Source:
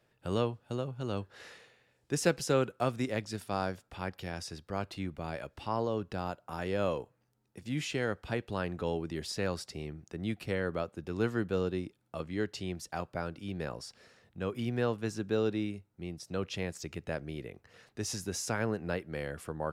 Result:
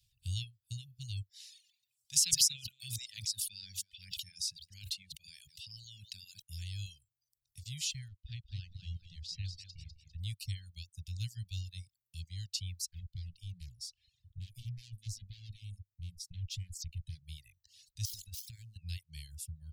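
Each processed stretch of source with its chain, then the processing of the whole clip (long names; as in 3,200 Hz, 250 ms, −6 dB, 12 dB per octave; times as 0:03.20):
0:01.29–0:06.42: delay that plays each chunk backwards 138 ms, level −12 dB + high-pass filter 250 Hz + level that may fall only so fast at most 48 dB per second
0:08.08–0:10.20: mu-law and A-law mismatch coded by A + high-frequency loss of the air 160 metres + repeating echo 200 ms, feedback 41%, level −5.5 dB
0:12.89–0:17.24: low-shelf EQ 320 Hz +11 dB + tube saturation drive 31 dB, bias 0.25 + flanger 1.8 Hz, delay 2.3 ms, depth 8.2 ms, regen −64%
0:18.05–0:18.76: gap after every zero crossing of 0.073 ms + downward compressor 16 to 1, threshold −36 dBFS
whole clip: reverb reduction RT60 0.58 s; inverse Chebyshev band-stop filter 280–1,300 Hz, stop band 60 dB; reverb reduction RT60 1.1 s; level +7.5 dB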